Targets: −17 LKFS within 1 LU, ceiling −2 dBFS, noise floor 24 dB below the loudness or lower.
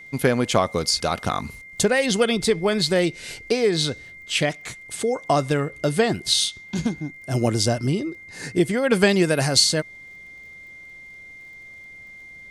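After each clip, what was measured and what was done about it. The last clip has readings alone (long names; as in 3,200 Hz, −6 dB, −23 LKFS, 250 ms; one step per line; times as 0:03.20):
crackle rate 30 per second; interfering tone 2,100 Hz; level of the tone −40 dBFS; integrated loudness −21.5 LKFS; sample peak −3.5 dBFS; target loudness −17.0 LKFS
→ click removal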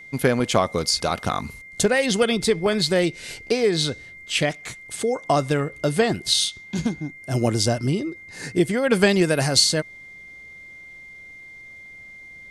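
crackle rate 0 per second; interfering tone 2,100 Hz; level of the tone −40 dBFS
→ notch filter 2,100 Hz, Q 30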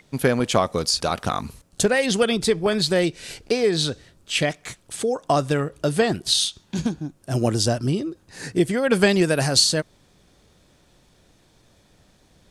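interfering tone none found; integrated loudness −21.5 LKFS; sample peak −3.5 dBFS; target loudness −17.0 LKFS
→ level +4.5 dB
brickwall limiter −2 dBFS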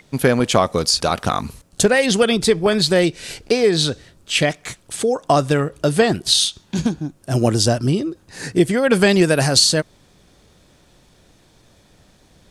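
integrated loudness −17.5 LKFS; sample peak −2.0 dBFS; background noise floor −54 dBFS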